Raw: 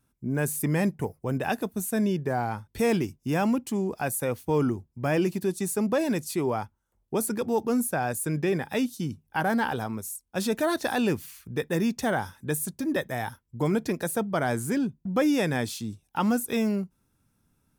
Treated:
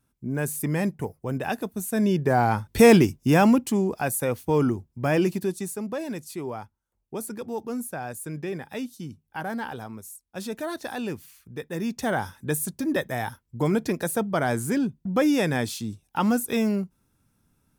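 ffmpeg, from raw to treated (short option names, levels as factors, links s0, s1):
-af "volume=8.41,afade=t=in:st=1.87:d=0.93:silence=0.281838,afade=t=out:st=2.8:d=1.19:silence=0.398107,afade=t=out:st=5.29:d=0.5:silence=0.375837,afade=t=in:st=11.71:d=0.53:silence=0.398107"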